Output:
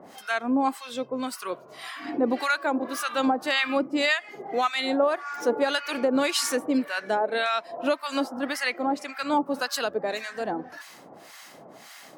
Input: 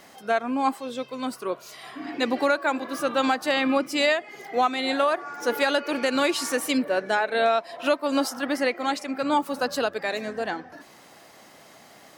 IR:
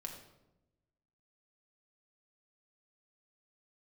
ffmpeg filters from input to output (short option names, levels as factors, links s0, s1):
-filter_complex "[0:a]highpass=120,asplit=2[s0][s1];[s1]acompressor=threshold=0.02:ratio=6,volume=0.944[s2];[s0][s2]amix=inputs=2:normalize=0,acrossover=split=980[s3][s4];[s3]aeval=exprs='val(0)*(1-1/2+1/2*cos(2*PI*1.8*n/s))':c=same[s5];[s4]aeval=exprs='val(0)*(1-1/2-1/2*cos(2*PI*1.8*n/s))':c=same[s6];[s5][s6]amix=inputs=2:normalize=0,volume=1.26"